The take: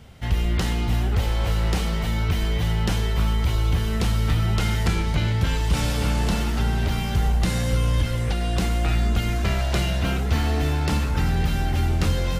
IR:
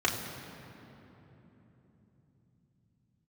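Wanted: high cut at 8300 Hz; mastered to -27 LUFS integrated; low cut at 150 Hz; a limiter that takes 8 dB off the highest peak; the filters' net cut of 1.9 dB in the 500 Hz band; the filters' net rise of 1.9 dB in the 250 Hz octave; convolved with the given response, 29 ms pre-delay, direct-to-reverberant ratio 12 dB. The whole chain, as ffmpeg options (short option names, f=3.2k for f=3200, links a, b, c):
-filter_complex "[0:a]highpass=150,lowpass=8.3k,equalizer=f=250:t=o:g=5,equalizer=f=500:t=o:g=-4,alimiter=limit=-19dB:level=0:latency=1,asplit=2[a][b];[1:a]atrim=start_sample=2205,adelay=29[c];[b][c]afir=irnorm=-1:irlink=0,volume=-23dB[d];[a][d]amix=inputs=2:normalize=0,volume=1dB"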